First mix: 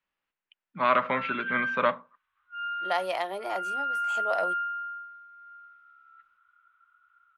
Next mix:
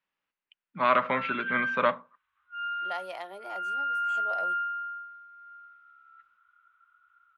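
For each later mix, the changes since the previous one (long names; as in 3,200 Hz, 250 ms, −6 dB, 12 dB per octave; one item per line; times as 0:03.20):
second voice −9.0 dB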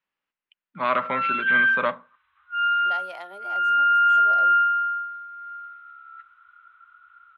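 background +11.5 dB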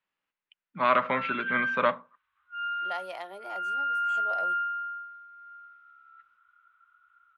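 background −10.5 dB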